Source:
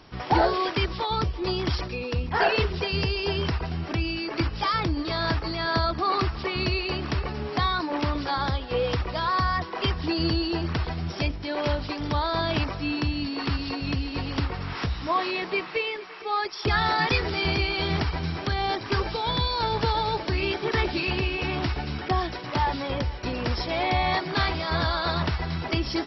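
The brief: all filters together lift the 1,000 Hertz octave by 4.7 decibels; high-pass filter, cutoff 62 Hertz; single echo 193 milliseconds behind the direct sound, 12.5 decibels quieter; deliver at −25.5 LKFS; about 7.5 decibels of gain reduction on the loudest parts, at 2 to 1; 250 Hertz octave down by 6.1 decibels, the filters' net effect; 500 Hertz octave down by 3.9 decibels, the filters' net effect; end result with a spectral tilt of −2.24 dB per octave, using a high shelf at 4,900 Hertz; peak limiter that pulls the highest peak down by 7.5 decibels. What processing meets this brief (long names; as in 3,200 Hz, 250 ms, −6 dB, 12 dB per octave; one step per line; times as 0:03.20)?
high-pass filter 62 Hz
parametric band 250 Hz −7.5 dB
parametric band 500 Hz −5.5 dB
parametric band 1,000 Hz +7.5 dB
high-shelf EQ 4,900 Hz +6 dB
downward compressor 2 to 1, threshold −28 dBFS
brickwall limiter −21 dBFS
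single-tap delay 193 ms −12.5 dB
level +5 dB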